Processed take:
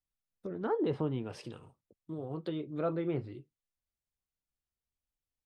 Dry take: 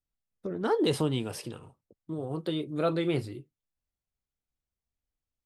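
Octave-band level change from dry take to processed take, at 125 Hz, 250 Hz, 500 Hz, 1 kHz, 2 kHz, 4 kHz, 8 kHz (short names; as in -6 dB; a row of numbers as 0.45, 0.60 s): -5.0 dB, -5.0 dB, -5.0 dB, -5.5 dB, -9.0 dB, -15.0 dB, under -15 dB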